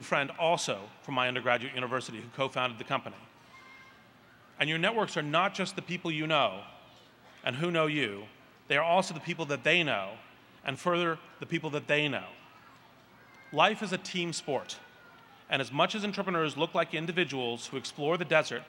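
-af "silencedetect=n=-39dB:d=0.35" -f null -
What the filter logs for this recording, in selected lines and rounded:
silence_start: 3.19
silence_end: 4.58 | silence_duration: 1.40
silence_start: 6.70
silence_end: 7.44 | silence_duration: 0.75
silence_start: 8.24
silence_end: 8.70 | silence_duration: 0.46
silence_start: 10.20
silence_end: 10.64 | silence_duration: 0.44
silence_start: 12.31
silence_end: 13.53 | silence_duration: 1.21
silence_start: 14.79
silence_end: 15.50 | silence_duration: 0.71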